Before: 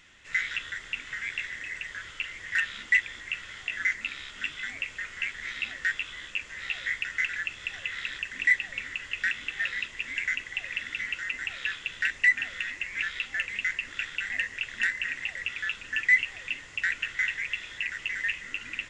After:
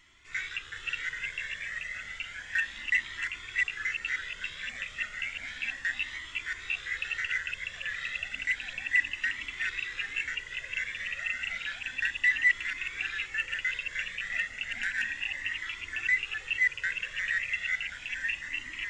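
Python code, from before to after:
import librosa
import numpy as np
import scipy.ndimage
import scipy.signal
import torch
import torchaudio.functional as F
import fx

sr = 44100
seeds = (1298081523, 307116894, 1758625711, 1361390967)

y = fx.reverse_delay(x, sr, ms=364, wet_db=-0.5)
y = fx.comb_cascade(y, sr, direction='rising', hz=0.32)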